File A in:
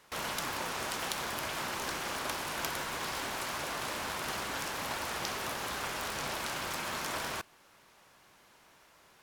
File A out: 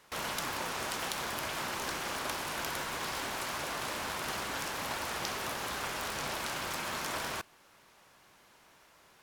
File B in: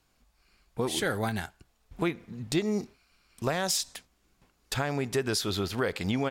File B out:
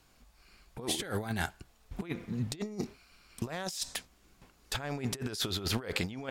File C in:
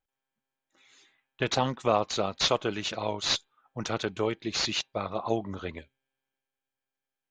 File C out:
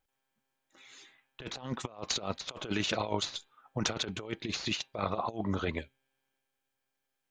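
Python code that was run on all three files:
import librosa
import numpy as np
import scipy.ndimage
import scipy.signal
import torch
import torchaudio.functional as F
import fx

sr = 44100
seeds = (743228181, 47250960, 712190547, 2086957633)

y = fx.over_compress(x, sr, threshold_db=-34.0, ratio=-0.5)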